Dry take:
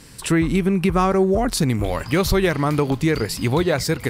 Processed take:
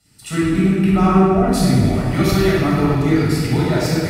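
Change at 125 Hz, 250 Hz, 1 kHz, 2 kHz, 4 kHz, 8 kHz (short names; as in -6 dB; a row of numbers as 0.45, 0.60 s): +5.5, +5.0, +2.5, +0.5, +0.5, -1.0 dB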